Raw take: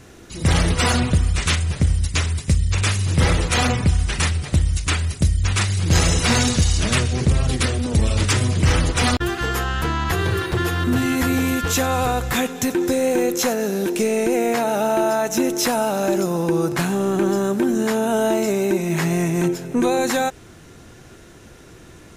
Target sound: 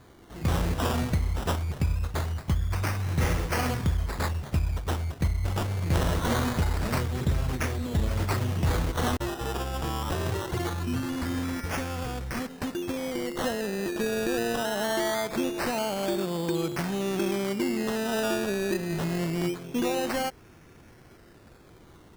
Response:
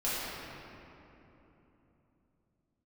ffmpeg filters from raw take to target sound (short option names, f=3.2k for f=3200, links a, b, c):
-filter_complex "[0:a]asettb=1/sr,asplit=3[a][b][c];[a]atrim=end=10.734[d];[b]atrim=start=10.73:end=13.37,asetpts=PTS-STARTPTS,afade=t=in:d=0.004:c=qsin,afade=t=out:st=2.636:d=0.004:c=qsin,equalizer=f=810:w=0.67:g=-9[e];[c]atrim=start=13.366[f];[d][e]acrossfade=d=0.004:c1=hsin:c2=qsin[g];[g][f]acrossfade=d=0.004:c1=qsin:c2=hsin,acrusher=samples=16:mix=1:aa=0.000001:lfo=1:lforange=9.6:lforate=0.23,volume=-8.5dB"